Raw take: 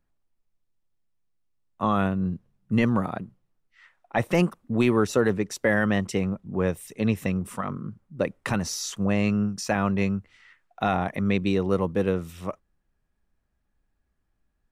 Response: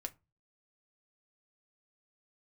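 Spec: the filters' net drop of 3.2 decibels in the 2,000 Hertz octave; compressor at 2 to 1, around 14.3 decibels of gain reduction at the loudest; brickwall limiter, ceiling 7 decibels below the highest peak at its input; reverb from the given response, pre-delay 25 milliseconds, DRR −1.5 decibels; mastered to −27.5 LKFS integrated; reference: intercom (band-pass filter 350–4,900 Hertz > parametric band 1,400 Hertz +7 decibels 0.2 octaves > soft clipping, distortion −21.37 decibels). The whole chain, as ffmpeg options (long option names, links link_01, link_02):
-filter_complex "[0:a]equalizer=frequency=2000:width_type=o:gain=-6.5,acompressor=threshold=-45dB:ratio=2,alimiter=level_in=4.5dB:limit=-24dB:level=0:latency=1,volume=-4.5dB,asplit=2[link_01][link_02];[1:a]atrim=start_sample=2205,adelay=25[link_03];[link_02][link_03]afir=irnorm=-1:irlink=0,volume=4dB[link_04];[link_01][link_04]amix=inputs=2:normalize=0,highpass=350,lowpass=4900,equalizer=frequency=1400:width_type=o:width=0.2:gain=7,asoftclip=threshold=-28.5dB,volume=14.5dB"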